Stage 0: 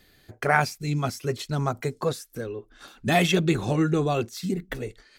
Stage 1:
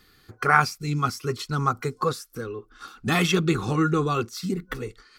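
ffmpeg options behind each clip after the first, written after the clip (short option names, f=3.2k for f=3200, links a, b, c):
-af "superequalizer=8b=0.355:10b=2.82:14b=1.41"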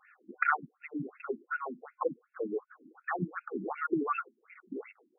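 -af "acompressor=threshold=-26dB:ratio=6,afftfilt=real='re*between(b*sr/1024,240*pow(2000/240,0.5+0.5*sin(2*PI*2.7*pts/sr))/1.41,240*pow(2000/240,0.5+0.5*sin(2*PI*2.7*pts/sr))*1.41)':imag='im*between(b*sr/1024,240*pow(2000/240,0.5+0.5*sin(2*PI*2.7*pts/sr))/1.41,240*pow(2000/240,0.5+0.5*sin(2*PI*2.7*pts/sr))*1.41)':win_size=1024:overlap=0.75,volume=4.5dB"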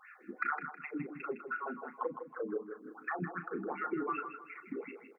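-filter_complex "[0:a]acompressor=threshold=-48dB:ratio=2,asplit=2[a][b];[b]adelay=35,volume=-10dB[c];[a][c]amix=inputs=2:normalize=0,asplit=2[d][e];[e]aecho=0:1:159|318|477|636:0.355|0.128|0.046|0.0166[f];[d][f]amix=inputs=2:normalize=0,volume=5.5dB"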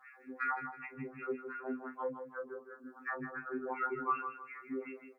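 -af "afftfilt=real='re*2.45*eq(mod(b,6),0)':imag='im*2.45*eq(mod(b,6),0)':win_size=2048:overlap=0.75,volume=2dB"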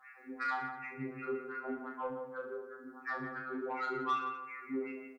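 -filter_complex "[0:a]asoftclip=type=tanh:threshold=-29.5dB,asplit=2[a][b];[b]aecho=0:1:30|67.5|114.4|173|246.2:0.631|0.398|0.251|0.158|0.1[c];[a][c]amix=inputs=2:normalize=0"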